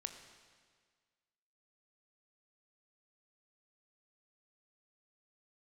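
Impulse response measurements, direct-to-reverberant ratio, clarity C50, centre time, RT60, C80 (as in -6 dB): 6.5 dB, 8.0 dB, 27 ms, 1.7 s, 9.0 dB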